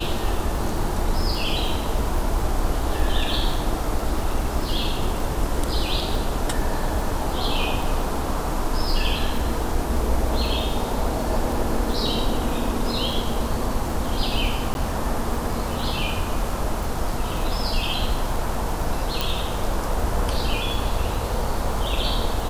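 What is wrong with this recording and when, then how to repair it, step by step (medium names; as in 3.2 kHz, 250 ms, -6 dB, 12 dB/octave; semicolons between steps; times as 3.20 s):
crackle 59 per s -28 dBFS
14.74–14.75 s: dropout 11 ms
19.21 s: pop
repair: de-click; interpolate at 14.74 s, 11 ms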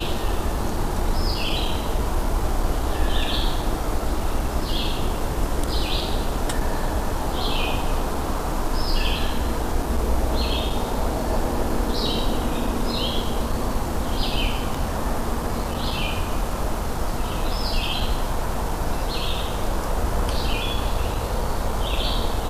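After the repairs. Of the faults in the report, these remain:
nothing left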